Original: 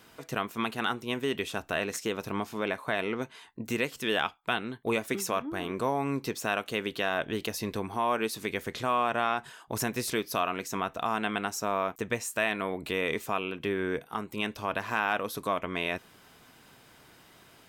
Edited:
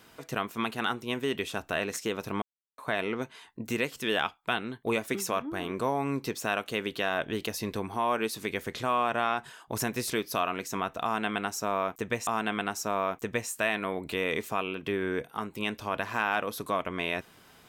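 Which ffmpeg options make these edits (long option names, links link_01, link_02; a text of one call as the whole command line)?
ffmpeg -i in.wav -filter_complex "[0:a]asplit=4[link_01][link_02][link_03][link_04];[link_01]atrim=end=2.42,asetpts=PTS-STARTPTS,afade=type=out:start_time=2.416:duration=0.004:curve=hsin[link_05];[link_02]atrim=start=2.42:end=2.78,asetpts=PTS-STARTPTS,volume=0[link_06];[link_03]atrim=start=2.78:end=12.272,asetpts=PTS-STARTPTS,afade=type=in:duration=0.004:curve=hsin[link_07];[link_04]atrim=start=11.038[link_08];[link_05][link_06][link_07]concat=n=3:v=0:a=1[link_09];[link_09][link_08]acrossfade=duration=0.004:curve1=hsin:curve2=hsin" out.wav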